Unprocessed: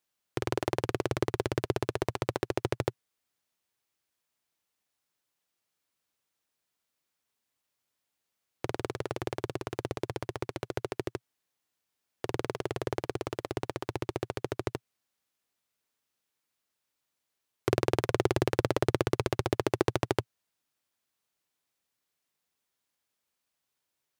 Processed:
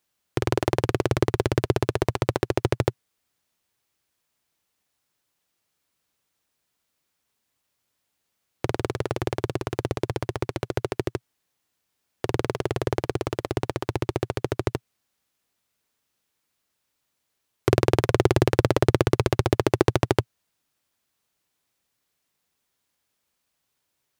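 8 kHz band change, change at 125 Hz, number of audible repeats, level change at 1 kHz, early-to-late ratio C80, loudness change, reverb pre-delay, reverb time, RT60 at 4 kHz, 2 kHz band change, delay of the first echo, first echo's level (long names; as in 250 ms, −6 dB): +6.0 dB, +10.0 dB, no echo audible, +6.0 dB, no reverb audible, +7.5 dB, no reverb audible, no reverb audible, no reverb audible, +6.0 dB, no echo audible, no echo audible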